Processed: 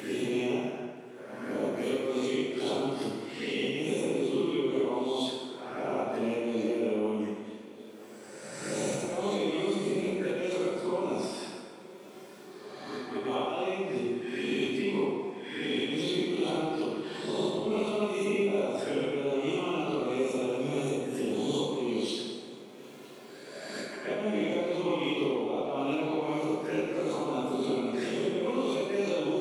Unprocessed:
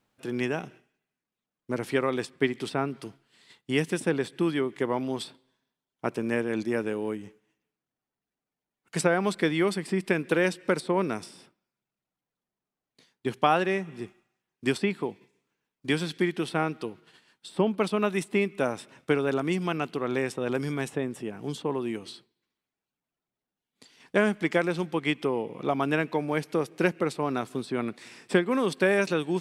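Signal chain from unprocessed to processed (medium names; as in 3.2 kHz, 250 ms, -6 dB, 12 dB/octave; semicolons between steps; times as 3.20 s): reverse spectral sustain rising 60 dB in 0.82 s; high-pass 220 Hz 12 dB/octave; treble shelf 10 kHz -7 dB; in parallel at 0 dB: upward compressor, threshold -27 dBFS; on the sum: slow attack 325 ms; compression 12:1, threshold -28 dBFS, peak gain reduction 17 dB; overload inside the chain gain 22 dB; touch-sensitive flanger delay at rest 3.6 ms, full sweep at -30 dBFS; on a send: shuffle delay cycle 1294 ms, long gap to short 3:1, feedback 67%, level -23 dB; on the sum: plate-style reverb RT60 1.7 s, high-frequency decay 0.65×, DRR -5 dB; trim -3 dB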